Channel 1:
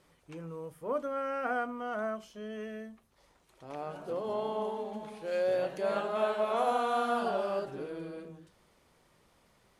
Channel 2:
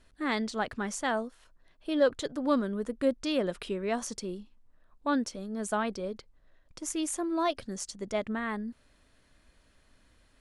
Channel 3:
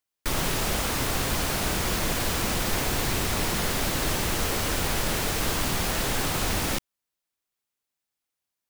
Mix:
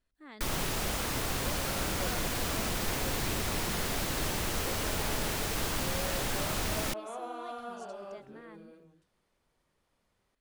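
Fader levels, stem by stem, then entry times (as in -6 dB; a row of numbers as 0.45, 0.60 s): -11.5, -19.5, -6.0 dB; 0.55, 0.00, 0.15 s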